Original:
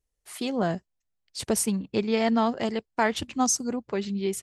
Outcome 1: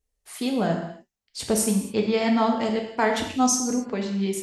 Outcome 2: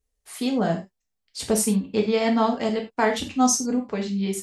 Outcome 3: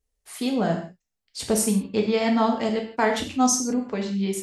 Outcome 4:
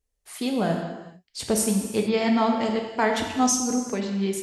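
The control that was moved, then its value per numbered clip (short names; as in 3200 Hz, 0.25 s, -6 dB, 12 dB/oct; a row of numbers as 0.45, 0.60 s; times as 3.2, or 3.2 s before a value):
non-linear reverb, gate: 0.3, 0.12, 0.19, 0.46 s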